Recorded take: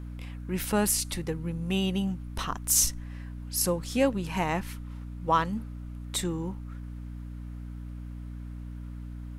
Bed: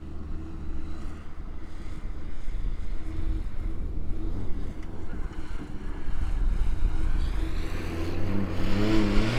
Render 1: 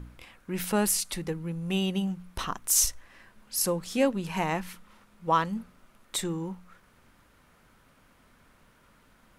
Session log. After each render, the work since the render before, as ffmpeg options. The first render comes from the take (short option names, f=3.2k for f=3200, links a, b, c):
-af "bandreject=f=60:t=h:w=4,bandreject=f=120:t=h:w=4,bandreject=f=180:t=h:w=4,bandreject=f=240:t=h:w=4,bandreject=f=300:t=h:w=4"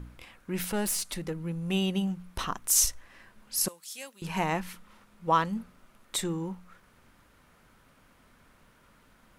-filter_complex "[0:a]asettb=1/sr,asplit=3[a][b][c];[a]atrim=end=0.674[d];[b]atrim=start=0.67:end=1.39,asetpts=PTS-STARTPTS,afade=t=in:d=0.004:c=qsin,afade=t=out:st=0.716:d=0.004:c=qsin,aeval=exprs='(tanh(17.8*val(0)+0.3)-tanh(0.3))/17.8':c=same[e];[c]atrim=start=1.386[f];[d][e]acrossfade=d=0.004:c1=hsin:c2=qsin[g];[g][f]acrossfade=d=0.004:c1=qsin:c2=hsin,asettb=1/sr,asplit=3[h][i][j];[h]atrim=end=3.684[k];[i]atrim=start=3.68:end=4.22,asetpts=PTS-STARTPTS,afade=t=in:d=0.004:c=qsin,afade=t=out:st=0.536:d=0.004:c=qsin,aderivative[l];[j]atrim=start=4.216[m];[k][l]acrossfade=d=0.004:c1=hsin:c2=qsin[n];[n][m]acrossfade=d=0.004:c1=qsin:c2=hsin"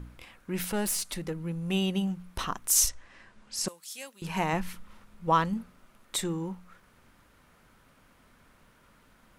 -filter_complex "[0:a]asettb=1/sr,asplit=3[a][b][c];[a]atrim=end=2.894[d];[b]atrim=start=2.89:end=3.68,asetpts=PTS-STARTPTS,afade=t=in:d=0.004:c=qsin,afade=t=out:st=0.786:d=0.004:c=qsin,lowpass=f=8.6k:w=0.5412,lowpass=f=8.6k:w=1.3066[e];[c]atrim=start=3.676[f];[d][e]acrossfade=d=0.004:c1=hsin:c2=qsin[g];[g][f]acrossfade=d=0.004:c1=qsin:c2=hsin,asettb=1/sr,asplit=3[h][i][j];[h]atrim=end=4.534[k];[i]atrim=start=4.53:end=5.54,asetpts=PTS-STARTPTS,afade=t=in:d=0.004:c=qsin,afade=t=out:st=1.006:d=0.004:c=qsin,lowshelf=f=110:g=10[l];[j]atrim=start=5.536[m];[k][l]acrossfade=d=0.004:c1=hsin:c2=qsin[n];[n][m]acrossfade=d=0.004:c1=qsin:c2=hsin"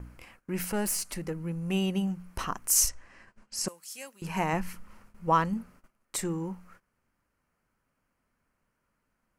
-af "agate=range=-17dB:threshold=-53dB:ratio=16:detection=peak,equalizer=f=3.6k:t=o:w=0.29:g=-13.5"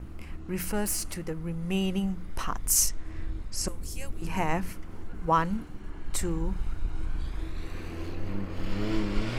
-filter_complex "[1:a]volume=-5.5dB[a];[0:a][a]amix=inputs=2:normalize=0"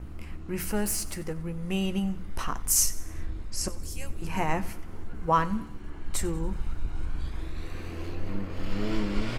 -filter_complex "[0:a]asplit=2[a][b];[b]adelay=14,volume=-11dB[c];[a][c]amix=inputs=2:normalize=0,aecho=1:1:93|186|279|372:0.112|0.0527|0.0248|0.0116"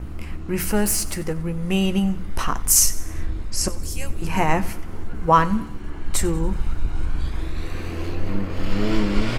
-af "volume=8dB,alimiter=limit=-3dB:level=0:latency=1"